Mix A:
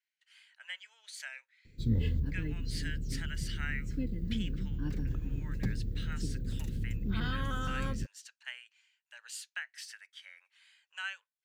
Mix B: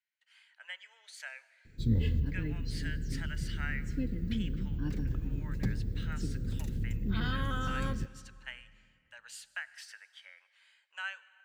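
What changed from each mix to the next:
speech: add tilt shelving filter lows +6 dB, about 1,400 Hz
reverb: on, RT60 2.2 s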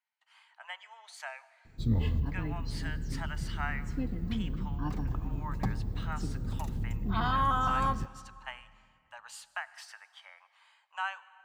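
master: add flat-topped bell 900 Hz +16 dB 1.1 octaves

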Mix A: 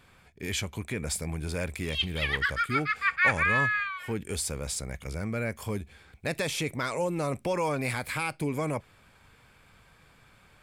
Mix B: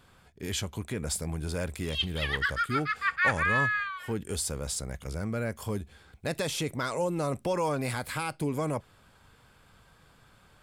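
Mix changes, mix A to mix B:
speech: add notch filter 1,800 Hz, Q 19
master: add parametric band 2,300 Hz −9.5 dB 0.25 octaves

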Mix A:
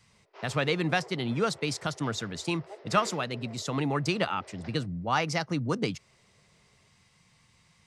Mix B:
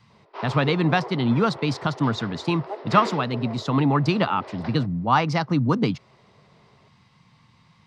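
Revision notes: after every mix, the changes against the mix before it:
background +6.5 dB
master: add graphic EQ with 10 bands 125 Hz +8 dB, 250 Hz +9 dB, 1,000 Hz +10 dB, 4,000 Hz +6 dB, 8,000 Hz −7 dB, 16,000 Hz −11 dB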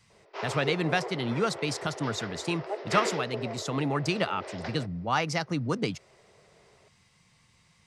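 background +5.0 dB
master: add graphic EQ with 10 bands 125 Hz −8 dB, 250 Hz −9 dB, 1,000 Hz −10 dB, 4,000 Hz −6 dB, 8,000 Hz +7 dB, 16,000 Hz +11 dB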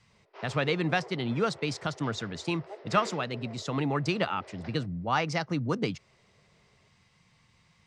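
background −9.5 dB
master: add high-frequency loss of the air 70 metres

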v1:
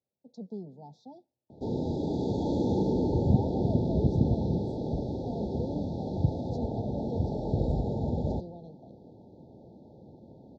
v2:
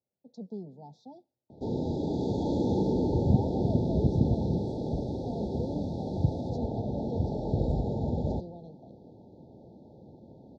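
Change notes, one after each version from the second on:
second sound: remove high-frequency loss of the air 53 metres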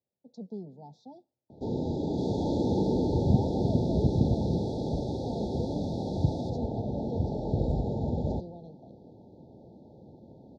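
second sound +7.0 dB

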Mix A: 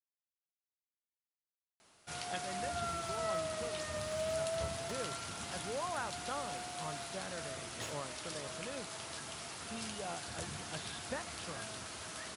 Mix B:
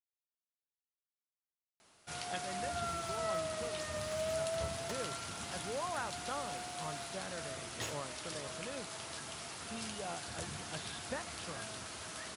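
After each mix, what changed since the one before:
second sound +3.5 dB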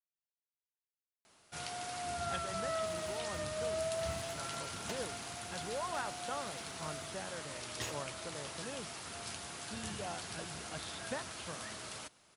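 first sound: entry −0.55 s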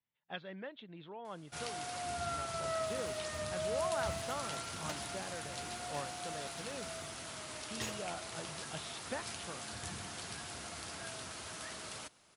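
speech: entry −2.00 s

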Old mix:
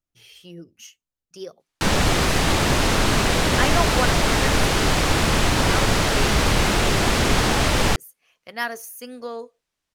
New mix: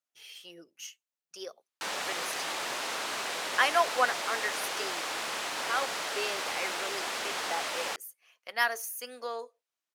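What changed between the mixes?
background −11.5 dB
master: add high-pass filter 610 Hz 12 dB per octave

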